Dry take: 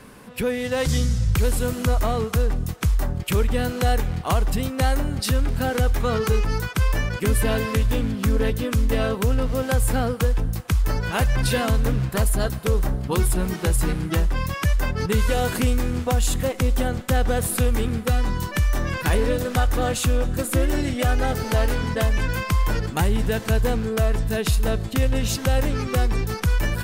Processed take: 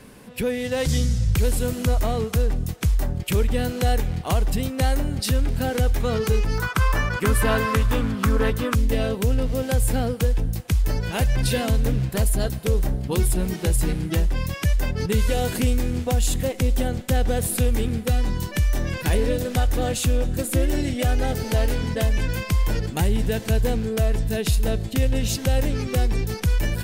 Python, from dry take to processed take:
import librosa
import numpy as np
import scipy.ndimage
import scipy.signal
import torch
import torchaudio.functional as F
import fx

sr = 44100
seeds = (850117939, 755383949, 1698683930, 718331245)

y = fx.peak_eq(x, sr, hz=1200.0, db=fx.steps((0.0, -6.0), (6.58, 8.5), (8.75, -8.5)), octaves=0.94)